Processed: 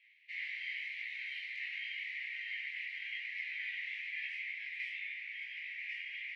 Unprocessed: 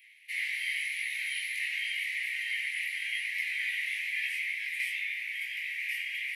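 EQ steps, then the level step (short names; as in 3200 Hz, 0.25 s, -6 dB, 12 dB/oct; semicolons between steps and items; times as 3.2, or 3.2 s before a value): LPF 5500 Hz 12 dB/oct; air absorption 120 m; -6.5 dB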